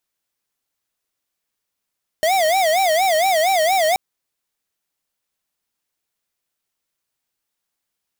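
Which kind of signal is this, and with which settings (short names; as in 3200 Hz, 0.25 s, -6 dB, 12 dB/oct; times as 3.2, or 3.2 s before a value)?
siren wail 618–781 Hz 4.3/s square -16.5 dBFS 1.73 s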